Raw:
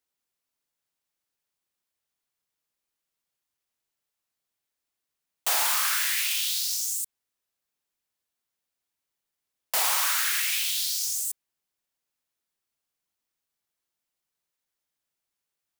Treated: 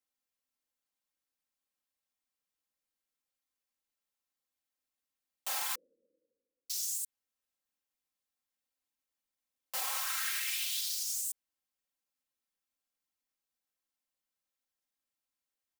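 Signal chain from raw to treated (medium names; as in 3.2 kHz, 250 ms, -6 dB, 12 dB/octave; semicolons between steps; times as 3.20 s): peak limiter -19 dBFS, peak gain reduction 7 dB; 5.75–6.70 s: steep low-pass 520 Hz 96 dB/octave; comb 3.8 ms, depth 88%; trim -8.5 dB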